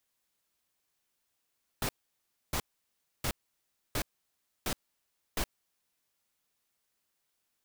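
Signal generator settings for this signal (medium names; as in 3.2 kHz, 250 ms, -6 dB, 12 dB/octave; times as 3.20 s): noise bursts pink, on 0.07 s, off 0.64 s, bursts 6, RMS -31.5 dBFS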